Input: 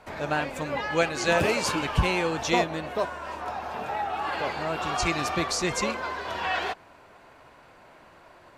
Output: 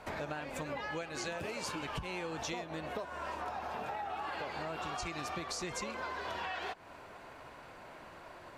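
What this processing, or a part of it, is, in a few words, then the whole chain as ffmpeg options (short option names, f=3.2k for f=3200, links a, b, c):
serial compression, leveller first: -af "acompressor=threshold=-27dB:ratio=3,acompressor=threshold=-38dB:ratio=6,volume=1dB"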